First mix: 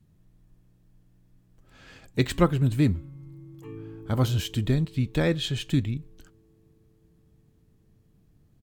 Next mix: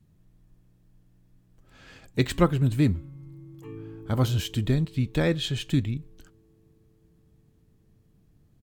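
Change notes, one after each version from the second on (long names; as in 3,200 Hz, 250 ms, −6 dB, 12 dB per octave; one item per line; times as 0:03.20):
nothing changed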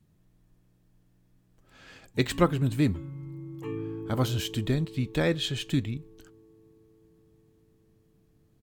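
background +8.0 dB
master: add low-shelf EQ 170 Hz −6.5 dB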